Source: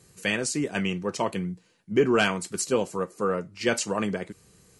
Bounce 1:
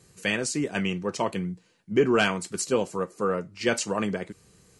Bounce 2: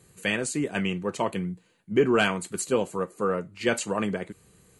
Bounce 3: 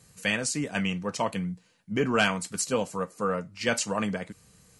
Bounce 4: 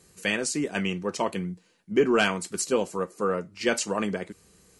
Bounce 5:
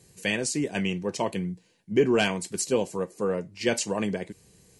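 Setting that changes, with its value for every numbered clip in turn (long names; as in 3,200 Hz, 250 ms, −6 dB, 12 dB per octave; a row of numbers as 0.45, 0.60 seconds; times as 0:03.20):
parametric band, centre frequency: 14,000, 5,400, 370, 120, 1,300 Hertz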